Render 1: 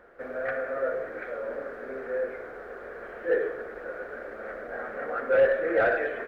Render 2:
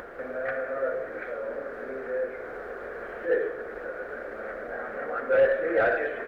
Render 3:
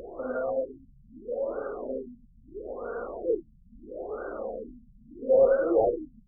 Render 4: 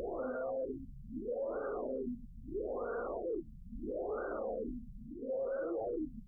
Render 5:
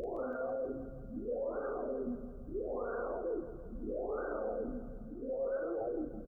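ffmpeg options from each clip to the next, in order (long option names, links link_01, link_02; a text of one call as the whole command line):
ffmpeg -i in.wav -af "acompressor=mode=upward:threshold=-31dB:ratio=2.5" out.wav
ffmpeg -i in.wav -af "flanger=delay=2.4:depth=1.9:regen=39:speed=1.2:shape=sinusoidal,afftfilt=real='re*lt(b*sr/1024,210*pow(1600/210,0.5+0.5*sin(2*PI*0.76*pts/sr)))':imag='im*lt(b*sr/1024,210*pow(1600/210,0.5+0.5*sin(2*PI*0.76*pts/sr)))':win_size=1024:overlap=0.75,volume=6.5dB" out.wav
ffmpeg -i in.wav -af "areverse,acompressor=threshold=-33dB:ratio=8,areverse,alimiter=level_in=13dB:limit=-24dB:level=0:latency=1:release=78,volume=-13dB,volume=6dB" out.wav
ffmpeg -i in.wav -filter_complex "[0:a]asplit=2[link_01][link_02];[link_02]adelay=37,volume=-12dB[link_03];[link_01][link_03]amix=inputs=2:normalize=0,aecho=1:1:165|330|495|660|825|990:0.251|0.146|0.0845|0.049|0.0284|0.0165" out.wav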